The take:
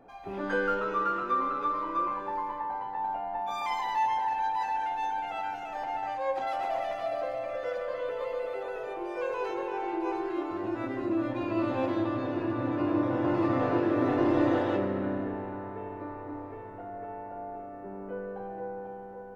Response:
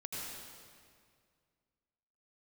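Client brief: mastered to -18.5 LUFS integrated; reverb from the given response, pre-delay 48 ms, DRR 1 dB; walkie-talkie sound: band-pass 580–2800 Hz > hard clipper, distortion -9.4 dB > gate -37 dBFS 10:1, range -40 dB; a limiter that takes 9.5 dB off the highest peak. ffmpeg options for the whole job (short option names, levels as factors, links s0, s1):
-filter_complex "[0:a]alimiter=limit=0.075:level=0:latency=1,asplit=2[s0][s1];[1:a]atrim=start_sample=2205,adelay=48[s2];[s1][s2]afir=irnorm=-1:irlink=0,volume=0.841[s3];[s0][s3]amix=inputs=2:normalize=0,highpass=580,lowpass=2800,asoftclip=type=hard:threshold=0.0251,agate=range=0.01:threshold=0.0141:ratio=10,volume=7.08"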